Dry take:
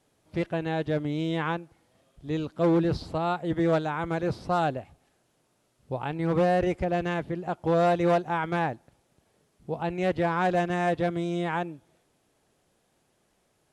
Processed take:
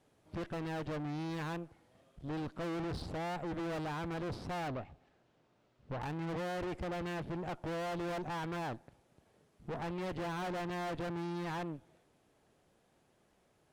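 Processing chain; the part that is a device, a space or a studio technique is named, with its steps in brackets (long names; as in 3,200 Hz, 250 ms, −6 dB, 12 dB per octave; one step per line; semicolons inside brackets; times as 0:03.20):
tube preamp driven hard (tube saturation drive 40 dB, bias 0.7; high-shelf EQ 3,800 Hz −7.5 dB)
0:04.68–0:06.01: low-pass filter 4,800 Hz 12 dB per octave
level +3.5 dB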